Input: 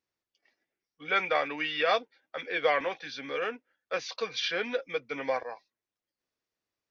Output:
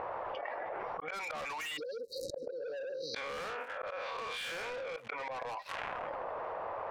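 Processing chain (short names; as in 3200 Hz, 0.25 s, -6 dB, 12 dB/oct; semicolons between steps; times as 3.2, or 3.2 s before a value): 2.6–4.97 time blur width 0.134 s; auto swell 0.257 s; ten-band EQ 250 Hz -8 dB, 500 Hz +9 dB, 1000 Hz +11 dB, 4000 Hz +4 dB; upward compressor, threshold -44 dBFS; crackle 260/s -59 dBFS; band shelf 1300 Hz +11.5 dB 2.8 oct; low-pass opened by the level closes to 770 Hz, open at -22.5 dBFS; 1.77–3.15 spectral delete 560–3800 Hz; soft clip -26 dBFS, distortion -6 dB; flipped gate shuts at -34 dBFS, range -40 dB; fast leveller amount 100%; gain +5 dB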